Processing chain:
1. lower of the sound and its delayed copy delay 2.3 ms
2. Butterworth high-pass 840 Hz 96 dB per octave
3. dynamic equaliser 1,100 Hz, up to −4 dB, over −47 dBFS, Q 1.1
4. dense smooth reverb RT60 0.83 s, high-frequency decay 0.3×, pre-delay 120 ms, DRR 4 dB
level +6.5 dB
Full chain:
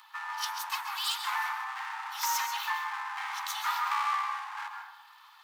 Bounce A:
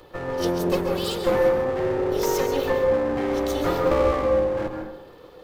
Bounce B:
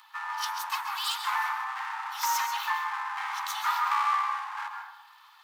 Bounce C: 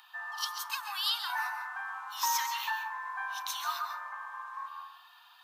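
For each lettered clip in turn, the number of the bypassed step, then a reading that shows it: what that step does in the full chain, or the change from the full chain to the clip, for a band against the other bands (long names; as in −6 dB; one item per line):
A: 2, change in crest factor −4.0 dB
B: 3, change in integrated loudness +2.5 LU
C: 1, 1 kHz band −3.0 dB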